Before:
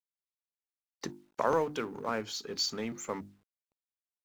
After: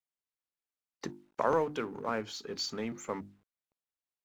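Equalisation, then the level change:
parametric band 5,100 Hz −3 dB 1.4 octaves
high-shelf EQ 9,500 Hz −9.5 dB
0.0 dB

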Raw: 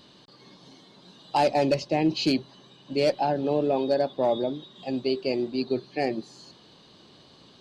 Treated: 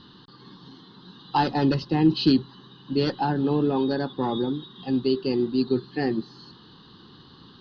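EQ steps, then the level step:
Gaussian smoothing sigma 1.6 samples
high-frequency loss of the air 67 metres
phaser with its sweep stopped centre 2,300 Hz, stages 6
+8.0 dB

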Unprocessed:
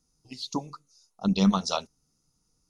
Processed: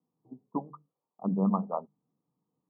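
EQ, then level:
high-pass filter 140 Hz 24 dB per octave
Butterworth low-pass 1,200 Hz 96 dB per octave
mains-hum notches 50/100/150/200 Hz
−2.0 dB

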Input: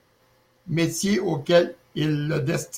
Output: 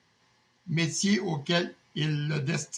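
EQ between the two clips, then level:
loudspeaker in its box 110–7,500 Hz, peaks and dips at 120 Hz −5 dB, 310 Hz −9 dB, 1,300 Hz −9 dB
parametric band 530 Hz −15 dB 0.56 octaves
0.0 dB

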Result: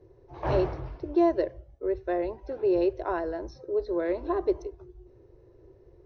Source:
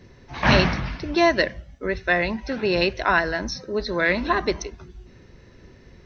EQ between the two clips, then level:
drawn EQ curve 130 Hz 0 dB, 210 Hz −21 dB, 350 Hz +9 dB, 950 Hz −2 dB, 1,900 Hz −16 dB
−8.0 dB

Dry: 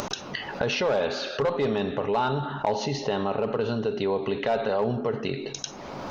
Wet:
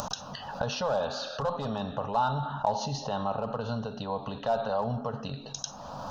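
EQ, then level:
phaser with its sweep stopped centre 890 Hz, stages 4
0.0 dB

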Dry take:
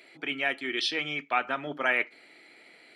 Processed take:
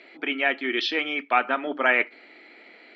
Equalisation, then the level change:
linear-phase brick-wall band-pass 180–7,600 Hz
high-frequency loss of the air 200 metres
+7.0 dB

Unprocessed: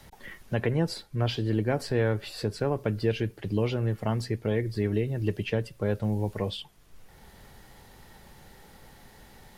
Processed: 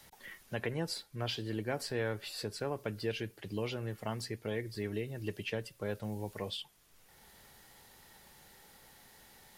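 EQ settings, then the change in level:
spectral tilt +2 dB per octave
−6.5 dB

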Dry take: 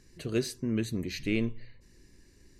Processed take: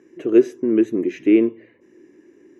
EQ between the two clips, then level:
moving average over 10 samples
high-pass with resonance 330 Hz, resonance Q 4
+7.5 dB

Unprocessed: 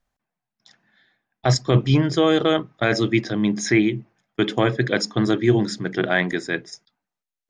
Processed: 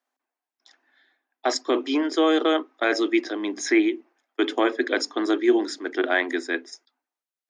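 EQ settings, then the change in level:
Chebyshev high-pass with heavy ripple 250 Hz, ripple 3 dB
0.0 dB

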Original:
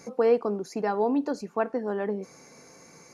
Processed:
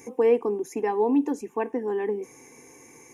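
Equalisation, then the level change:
parametric band 180 Hz +9.5 dB 2.1 octaves
high-shelf EQ 3,300 Hz +10 dB
phaser with its sweep stopped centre 910 Hz, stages 8
0.0 dB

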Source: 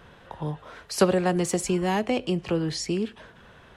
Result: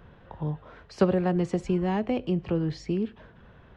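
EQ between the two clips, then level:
head-to-tape spacing loss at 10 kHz 36 dB
low-shelf EQ 220 Hz +6.5 dB
high-shelf EQ 3,400 Hz +9 dB
−2.5 dB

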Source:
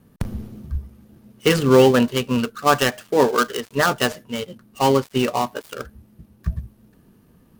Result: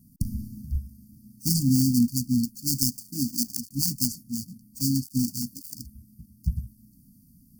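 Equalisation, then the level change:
linear-phase brick-wall band-stop 300–4,400 Hz
parametric band 3,600 Hz +2.5 dB 0.77 octaves
high-shelf EQ 7,800 Hz +11 dB
−2.0 dB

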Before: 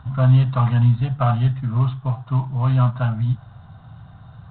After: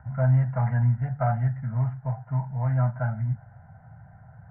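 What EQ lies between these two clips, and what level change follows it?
Butterworth low-pass 2,500 Hz 96 dB per octave
low-shelf EQ 93 Hz −8 dB
phaser with its sweep stopped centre 1,700 Hz, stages 8
−2.0 dB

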